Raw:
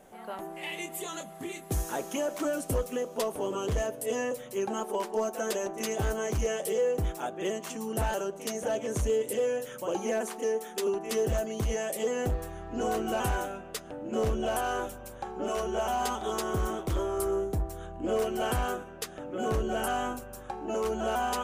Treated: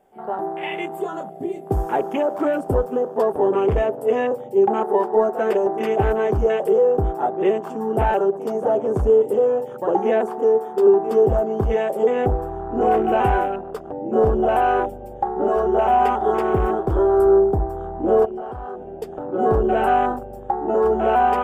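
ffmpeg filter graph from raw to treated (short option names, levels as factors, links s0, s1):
-filter_complex "[0:a]asettb=1/sr,asplit=3[s0][s1][s2];[s0]atrim=end=18.254[s3];[s1]atrim=start=18.25:end=18.89,asetpts=PTS-STARTPTS,afade=t=in:d=0.004:c=qsin,afade=t=out:st=0.636:d=0.004:c=qsin,lowpass=6000,acompressor=threshold=0.0112:ratio=8:attack=3.2:release=140:knee=1:detection=peak[s4];[s2]atrim=start=18.886[s5];[s3][s4]acrossfade=d=0.004:c1=hsin:c2=qsin[s6];[s6][s5]acrossfade=d=0.004:c1=qsin:c2=hsin,bandreject=f=4000:w=7.4,afwtdn=0.01,equalizer=f=400:t=o:w=0.33:g=8,equalizer=f=800:t=o:w=0.33:g=9,equalizer=f=6300:t=o:w=0.33:g=-9,equalizer=f=10000:t=o:w=0.33:g=-7,volume=2.51"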